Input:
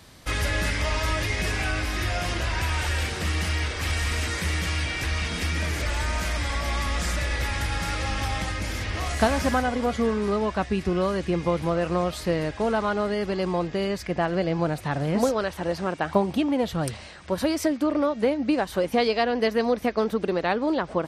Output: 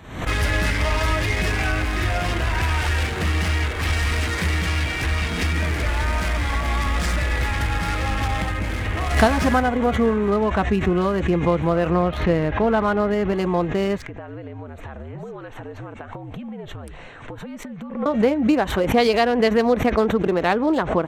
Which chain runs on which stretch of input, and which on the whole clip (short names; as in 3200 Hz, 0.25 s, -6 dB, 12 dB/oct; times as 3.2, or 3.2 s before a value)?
11.9–13.33 steep low-pass 5800 Hz + tone controls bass +2 dB, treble -6 dB + mismatched tape noise reduction encoder only
14.02–18.06 frequency shift -64 Hz + compressor 8:1, threshold -36 dBFS
whole clip: Wiener smoothing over 9 samples; notch 560 Hz, Q 15; backwards sustainer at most 88 dB/s; gain +5 dB